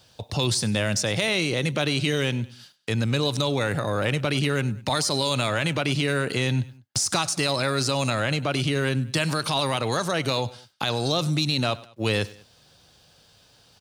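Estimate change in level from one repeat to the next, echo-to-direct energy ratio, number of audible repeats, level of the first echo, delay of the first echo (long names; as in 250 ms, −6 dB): −6.5 dB, −19.0 dB, 2, −20.0 dB, 99 ms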